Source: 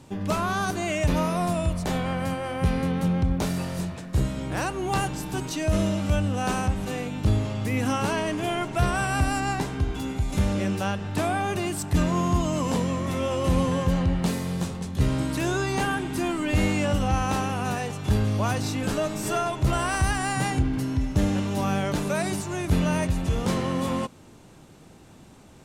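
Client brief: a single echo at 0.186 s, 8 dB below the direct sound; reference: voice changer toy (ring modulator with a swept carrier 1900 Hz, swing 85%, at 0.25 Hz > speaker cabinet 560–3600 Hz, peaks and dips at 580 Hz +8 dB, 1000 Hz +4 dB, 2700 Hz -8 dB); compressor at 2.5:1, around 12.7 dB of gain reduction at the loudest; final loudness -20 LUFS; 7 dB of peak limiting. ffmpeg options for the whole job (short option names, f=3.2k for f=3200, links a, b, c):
-af "acompressor=threshold=-37dB:ratio=2.5,alimiter=level_in=4dB:limit=-24dB:level=0:latency=1,volume=-4dB,aecho=1:1:186:0.398,aeval=exprs='val(0)*sin(2*PI*1900*n/s+1900*0.85/0.25*sin(2*PI*0.25*n/s))':c=same,highpass=560,equalizer=f=580:t=q:w=4:g=8,equalizer=f=1k:t=q:w=4:g=4,equalizer=f=2.7k:t=q:w=4:g=-8,lowpass=f=3.6k:w=0.5412,lowpass=f=3.6k:w=1.3066,volume=19.5dB"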